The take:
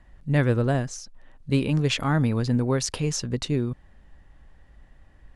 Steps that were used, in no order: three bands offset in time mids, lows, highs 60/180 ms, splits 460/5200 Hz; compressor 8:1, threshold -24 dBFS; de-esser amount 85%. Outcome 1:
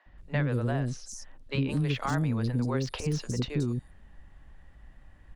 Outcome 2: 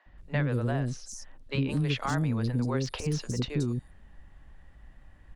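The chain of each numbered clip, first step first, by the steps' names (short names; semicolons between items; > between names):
three bands offset in time > de-esser > compressor; three bands offset in time > compressor > de-esser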